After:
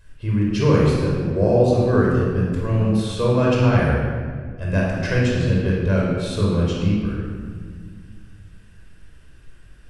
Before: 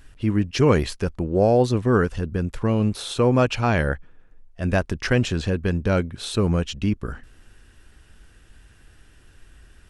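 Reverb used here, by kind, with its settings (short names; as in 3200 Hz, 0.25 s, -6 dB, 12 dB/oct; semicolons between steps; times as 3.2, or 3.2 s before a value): shoebox room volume 2500 m³, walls mixed, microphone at 5.2 m; gain -8 dB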